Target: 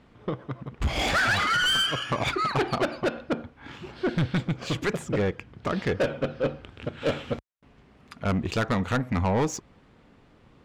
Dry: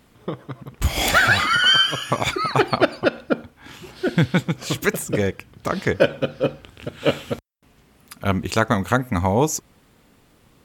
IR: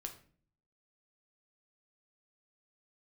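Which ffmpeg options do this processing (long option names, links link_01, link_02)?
-af "asoftclip=type=tanh:threshold=-19.5dB,adynamicsmooth=sensitivity=1.5:basefreq=3700"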